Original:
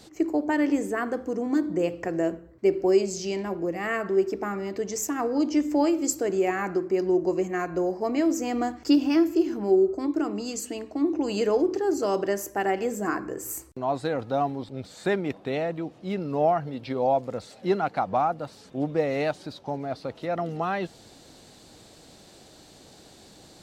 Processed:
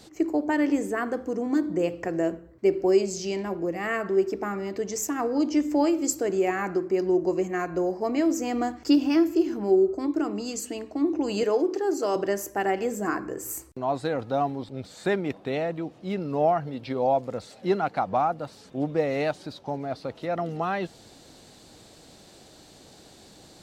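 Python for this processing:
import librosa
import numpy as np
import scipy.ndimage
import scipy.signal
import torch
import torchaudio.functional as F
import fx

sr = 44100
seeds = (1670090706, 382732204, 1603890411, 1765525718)

y = fx.highpass(x, sr, hz=260.0, slope=12, at=(11.43, 12.16))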